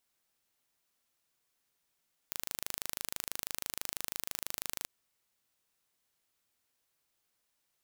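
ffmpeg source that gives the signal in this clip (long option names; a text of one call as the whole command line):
ffmpeg -f lavfi -i "aevalsrc='0.376*eq(mod(n,1690),0)':duration=2.54:sample_rate=44100" out.wav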